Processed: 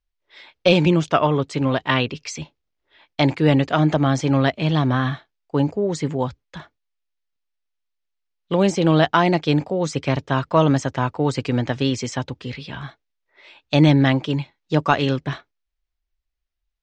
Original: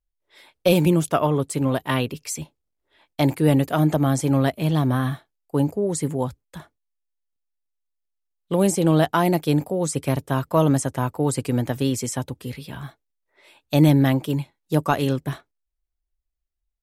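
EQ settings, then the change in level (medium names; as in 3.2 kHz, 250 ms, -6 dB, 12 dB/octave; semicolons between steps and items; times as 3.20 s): resonant low-pass 6.5 kHz, resonance Q 1.8; distance through air 150 m; peaking EQ 2.7 kHz +7 dB 2.8 oct; +1.0 dB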